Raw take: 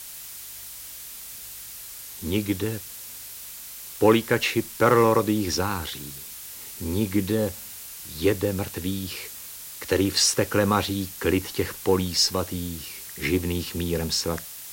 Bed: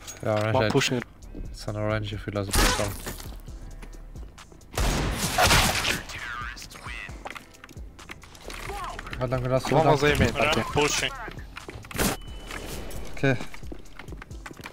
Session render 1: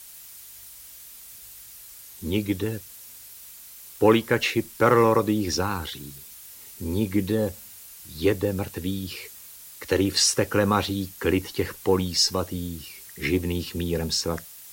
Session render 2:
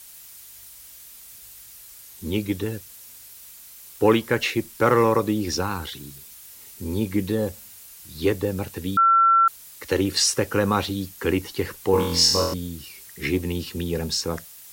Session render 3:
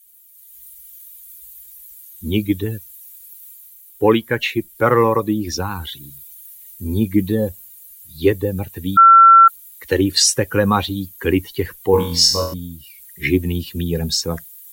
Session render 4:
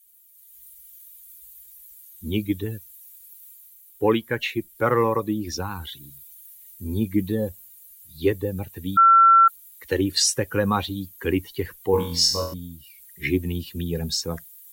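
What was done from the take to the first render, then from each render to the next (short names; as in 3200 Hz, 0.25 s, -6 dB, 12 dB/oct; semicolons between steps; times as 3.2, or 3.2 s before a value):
denoiser 7 dB, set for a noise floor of -40 dBFS
8.97–9.48 bleep 1350 Hz -13 dBFS; 11.91–12.54 flutter echo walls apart 4 m, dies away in 0.7 s
per-bin expansion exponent 1.5; AGC gain up to 10 dB
gain -6 dB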